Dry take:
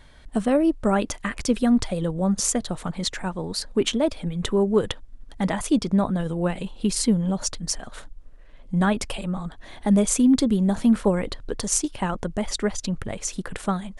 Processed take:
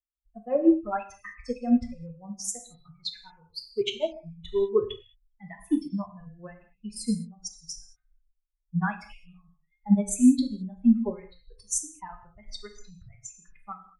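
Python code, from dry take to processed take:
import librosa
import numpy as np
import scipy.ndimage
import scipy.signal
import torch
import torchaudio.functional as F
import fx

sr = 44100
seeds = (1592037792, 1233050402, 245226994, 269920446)

y = fx.bin_expand(x, sr, power=3.0)
y = fx.rev_gated(y, sr, seeds[0], gate_ms=240, shape='falling', drr_db=3.0)
y = fx.upward_expand(y, sr, threshold_db=-38.0, expansion=1.5)
y = y * 10.0 ** (3.0 / 20.0)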